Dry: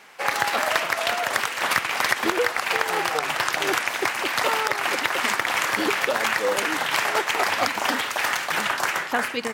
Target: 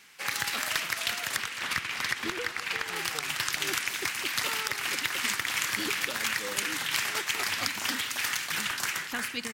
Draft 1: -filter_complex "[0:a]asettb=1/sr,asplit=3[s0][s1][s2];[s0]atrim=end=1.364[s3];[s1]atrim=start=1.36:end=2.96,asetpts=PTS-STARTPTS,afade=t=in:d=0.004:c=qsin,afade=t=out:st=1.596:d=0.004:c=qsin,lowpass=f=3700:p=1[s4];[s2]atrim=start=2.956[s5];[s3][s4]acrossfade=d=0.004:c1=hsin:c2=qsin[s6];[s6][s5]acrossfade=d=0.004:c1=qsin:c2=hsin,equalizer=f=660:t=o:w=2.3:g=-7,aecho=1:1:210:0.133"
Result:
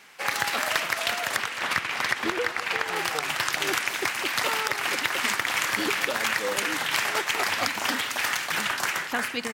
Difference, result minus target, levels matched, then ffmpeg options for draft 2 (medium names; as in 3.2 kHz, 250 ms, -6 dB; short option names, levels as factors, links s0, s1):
500 Hz band +5.5 dB
-filter_complex "[0:a]asettb=1/sr,asplit=3[s0][s1][s2];[s0]atrim=end=1.364[s3];[s1]atrim=start=1.36:end=2.96,asetpts=PTS-STARTPTS,afade=t=in:d=0.004:c=qsin,afade=t=out:st=1.596:d=0.004:c=qsin,lowpass=f=3700:p=1[s4];[s2]atrim=start=2.956[s5];[s3][s4]acrossfade=d=0.004:c1=hsin:c2=qsin[s6];[s6][s5]acrossfade=d=0.004:c1=qsin:c2=hsin,equalizer=f=660:t=o:w=2.3:g=-18.5,aecho=1:1:210:0.133"